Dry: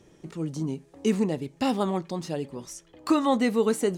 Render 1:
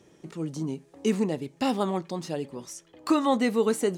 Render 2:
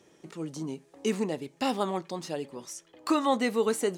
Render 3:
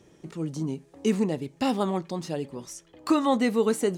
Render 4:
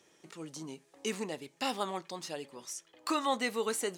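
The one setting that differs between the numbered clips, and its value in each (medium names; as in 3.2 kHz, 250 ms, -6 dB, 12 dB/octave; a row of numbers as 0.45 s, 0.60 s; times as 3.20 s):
high-pass, cutoff frequency: 130 Hz, 390 Hz, 45 Hz, 1.3 kHz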